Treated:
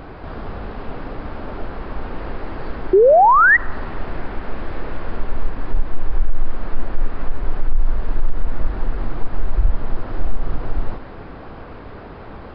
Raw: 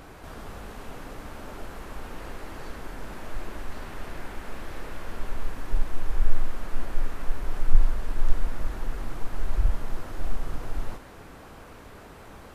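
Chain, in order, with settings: treble shelf 2.3 kHz -11.5 dB; painted sound rise, 2.93–3.57 s, 360–2000 Hz -14 dBFS; in parallel at -2.5 dB: compression, threshold -26 dBFS, peak gain reduction 18.5 dB; on the sum: resampled via 11.025 kHz; on a send at -23.5 dB: reverberation RT60 2.1 s, pre-delay 3 ms; on the sum: loudness maximiser +11 dB; trim -5 dB

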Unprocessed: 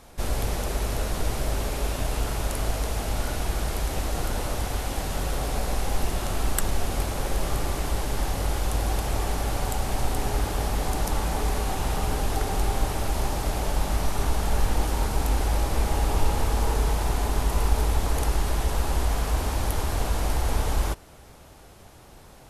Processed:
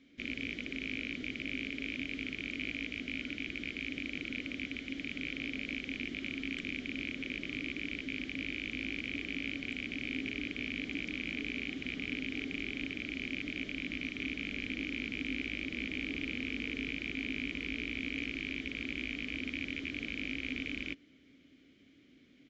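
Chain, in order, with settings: rattle on loud lows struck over -27 dBFS, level -15 dBFS; vowel filter i; resampled via 16 kHz; trim +2.5 dB

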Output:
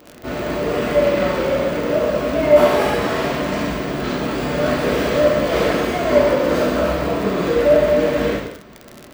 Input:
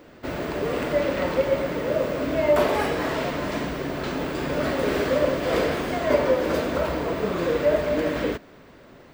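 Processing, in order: gated-style reverb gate 270 ms falling, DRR -7.5 dB; crackle 48 per s -22 dBFS; trim -2.5 dB

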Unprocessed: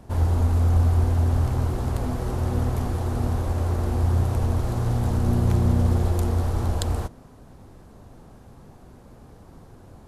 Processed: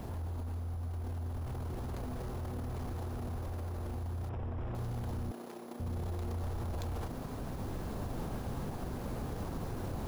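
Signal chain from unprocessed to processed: careless resampling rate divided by 4×, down none, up hold; word length cut 12-bit, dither triangular; 4.29–4.75 s: Savitzky-Golay filter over 25 samples; peak limiter -38.5 dBFS, peak gain reduction 28 dB; 5.31–5.80 s: high-pass 270 Hz 24 dB/octave; gain riding 2 s; trim +6.5 dB

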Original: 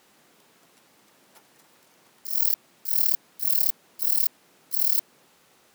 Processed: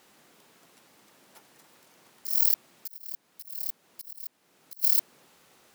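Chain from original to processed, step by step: 2.37–4.83 s: slow attack 741 ms

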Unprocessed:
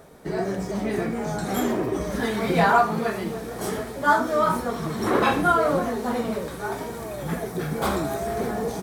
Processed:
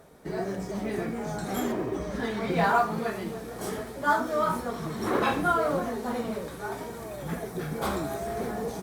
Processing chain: 1.72–2.64 s: distance through air 52 m; modulation noise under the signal 32 dB; trim -5 dB; Opus 64 kbps 48 kHz

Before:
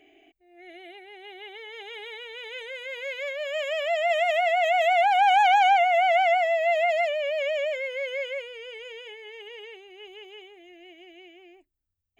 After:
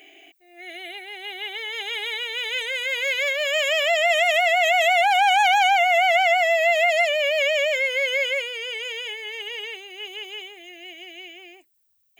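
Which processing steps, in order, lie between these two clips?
tilt EQ +3.5 dB/octave; compression 2.5:1, threshold -25 dBFS, peak gain reduction 7 dB; trim +7.5 dB

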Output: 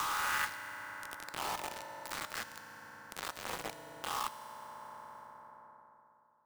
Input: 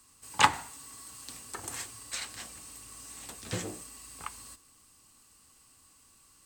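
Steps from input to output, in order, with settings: reverse spectral sustain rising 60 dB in 0.85 s; steep low-pass 9.9 kHz 96 dB/octave; treble shelf 4.7 kHz +3.5 dB; hum notches 60/120/180/240/300/360/420/480/540/600 Hz; dynamic bell 6.4 kHz, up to -4 dB, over -46 dBFS, Q 3.2; compression 2.5:1, threshold -49 dBFS, peak gain reduction 23.5 dB; wah-wah 0.45 Hz 760–1700 Hz, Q 3.7; companded quantiser 4-bit; on a send at -8 dB: reverberation RT60 2.7 s, pre-delay 3 ms; on the sum: three bands compressed up and down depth 70%; trim +17.5 dB

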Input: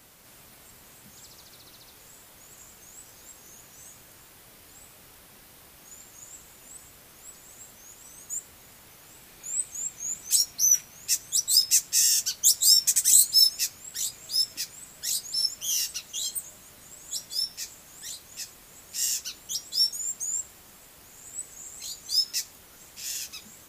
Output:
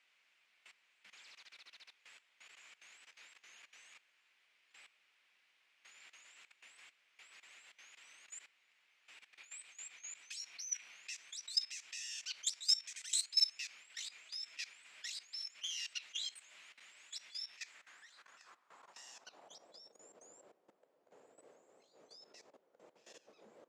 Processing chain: level held to a coarse grid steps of 17 dB; band-pass sweep 2.4 kHz -> 510 Hz, 17.48–19.95 s; band-pass 180–7700 Hz; trim +4.5 dB

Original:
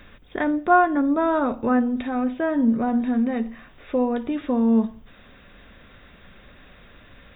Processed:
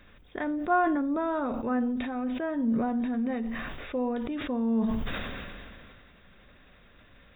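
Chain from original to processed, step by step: decay stretcher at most 24 dB/s; trim -8.5 dB

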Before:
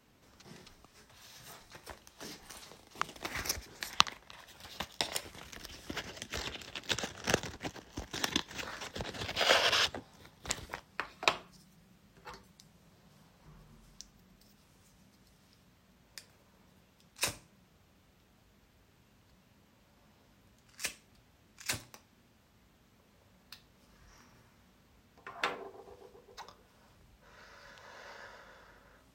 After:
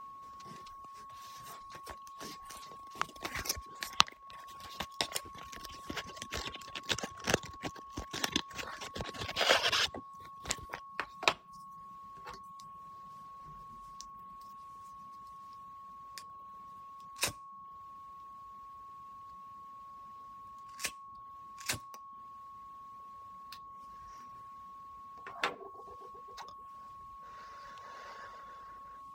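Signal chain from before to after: whistle 1.1 kHz -45 dBFS; reverb removal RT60 0.64 s

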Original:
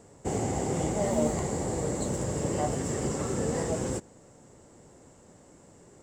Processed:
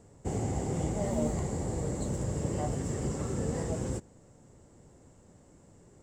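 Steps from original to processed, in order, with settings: bass shelf 170 Hz +10.5 dB; trim -6.5 dB

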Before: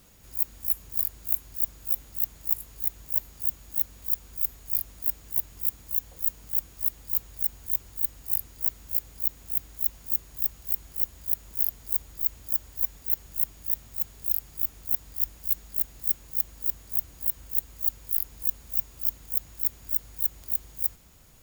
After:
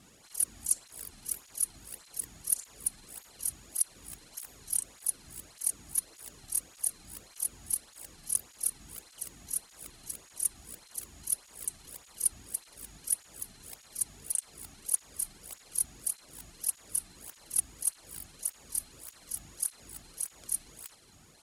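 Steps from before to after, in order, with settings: pitch shift switched off and on -8.5 st, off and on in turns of 220 ms; low-pass 11 kHz 24 dB/octave; cancelling through-zero flanger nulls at 1.7 Hz, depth 2.2 ms; trim +3.5 dB

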